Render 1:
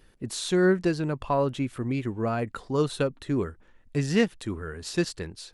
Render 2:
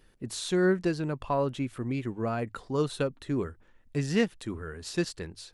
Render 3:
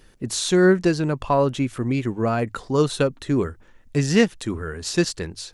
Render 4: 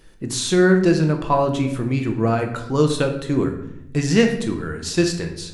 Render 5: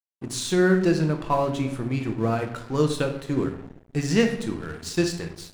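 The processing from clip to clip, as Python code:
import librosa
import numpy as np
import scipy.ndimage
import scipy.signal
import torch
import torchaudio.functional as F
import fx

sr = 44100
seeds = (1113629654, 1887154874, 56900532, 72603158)

y1 = fx.hum_notches(x, sr, base_hz=50, count=2)
y1 = y1 * 10.0 ** (-3.0 / 20.0)
y2 = fx.peak_eq(y1, sr, hz=6300.0, db=4.5, octaves=0.68)
y2 = y2 * 10.0 ** (8.5 / 20.0)
y3 = fx.room_shoebox(y2, sr, seeds[0], volume_m3=220.0, walls='mixed', distance_m=0.68)
y4 = np.sign(y3) * np.maximum(np.abs(y3) - 10.0 ** (-37.0 / 20.0), 0.0)
y4 = y4 * 10.0 ** (-4.0 / 20.0)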